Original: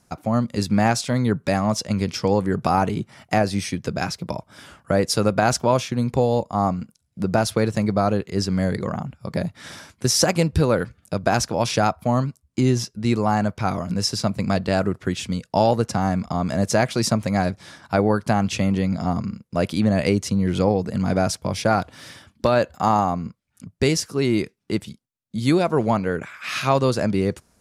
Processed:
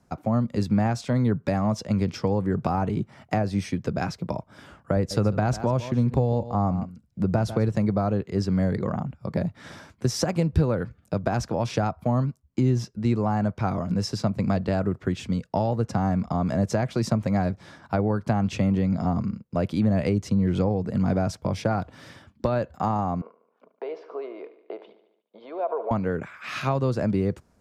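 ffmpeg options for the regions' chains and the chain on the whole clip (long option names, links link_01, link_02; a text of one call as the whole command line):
ffmpeg -i in.wav -filter_complex "[0:a]asettb=1/sr,asplit=3[link_01][link_02][link_03];[link_01]atrim=end=4.964[link_04];[link_02]atrim=start=4.96:end=7.69,asetpts=PTS-STARTPTS,afade=type=in:duration=0.004:curve=qsin,afade=type=out:start_time=2.726:duration=0.004:curve=qsin,lowshelf=frequency=78:gain=8.5,aecho=1:1:147:0.158,atrim=end_sample=120393[link_05];[link_03]atrim=start=7.686[link_06];[link_04][link_05]acrossfade=duration=0.004:curve1=hsin:curve2=qsin[link_07];[link_07][link_06]acrossfade=duration=0.004:curve1=qsin:curve2=hsin,asettb=1/sr,asplit=3[link_08][link_09][link_10];[link_08]atrim=end=23.214[link_11];[link_09]atrim=start=23.21:end=25.91,asetpts=PTS-STARTPTS,afade=type=in:duration=0.004:curve=qsin,afade=type=out:start_time=2.696:duration=0.004:curve=qsin,acompressor=threshold=-25dB:ratio=12:attack=3.2:release=140:knee=1:detection=peak,highpass=frequency=450:width=0.5412,highpass=frequency=450:width=1.3066,equalizer=frequency=460:width_type=q:width=4:gain=8,equalizer=frequency=660:width_type=q:width=4:gain=10,equalizer=frequency=1000:width_type=q:width=4:gain=8,equalizer=frequency=1900:width_type=q:width=4:gain=-8,equalizer=frequency=2700:width_type=q:width=4:gain=-4,lowpass=frequency=2900:width=0.5412,lowpass=frequency=2900:width=1.3066,aecho=1:1:73|146|219|292|365|438:0.2|0.118|0.0695|0.041|0.0242|0.0143,atrim=end_sample=119070[link_12];[link_10]atrim=start=25.906[link_13];[link_11][link_12]acrossfade=duration=0.004:curve1=hsin:curve2=qsin[link_14];[link_14][link_13]acrossfade=duration=0.004:curve1=qsin:curve2=hsin,highshelf=frequency=2100:gain=-11,acrossover=split=160[link_15][link_16];[link_16]acompressor=threshold=-22dB:ratio=6[link_17];[link_15][link_17]amix=inputs=2:normalize=0,equalizer=frequency=10000:width=4.2:gain=-6.5" out.wav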